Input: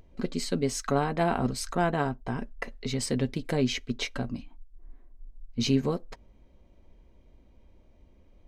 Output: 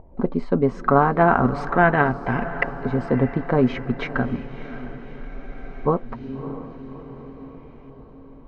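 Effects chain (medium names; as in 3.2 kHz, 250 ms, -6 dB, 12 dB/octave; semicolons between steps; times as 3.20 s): LFO low-pass saw up 0.38 Hz 830–2400 Hz; echo that smears into a reverb 621 ms, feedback 56%, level -13.5 dB; spectral freeze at 5.30 s, 0.56 s; trim +7.5 dB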